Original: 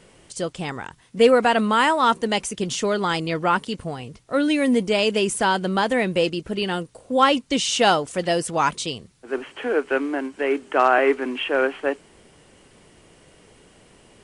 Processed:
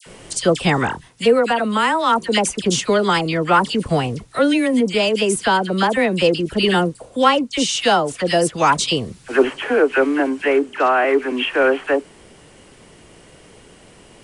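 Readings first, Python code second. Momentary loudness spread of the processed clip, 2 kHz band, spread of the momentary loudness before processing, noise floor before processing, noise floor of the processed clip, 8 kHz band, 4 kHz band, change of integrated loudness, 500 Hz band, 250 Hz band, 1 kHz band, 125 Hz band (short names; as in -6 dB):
5 LU, +4.0 dB, 13 LU, -54 dBFS, -47 dBFS, +5.0 dB, +4.5 dB, +3.5 dB, +4.0 dB, +4.5 dB, +3.0 dB, +7.0 dB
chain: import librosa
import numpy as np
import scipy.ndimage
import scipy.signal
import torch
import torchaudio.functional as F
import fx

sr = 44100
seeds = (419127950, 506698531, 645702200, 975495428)

y = fx.rider(x, sr, range_db=10, speed_s=0.5)
y = fx.dispersion(y, sr, late='lows', ms=64.0, hz=1600.0)
y = y * 10.0 ** (4.0 / 20.0)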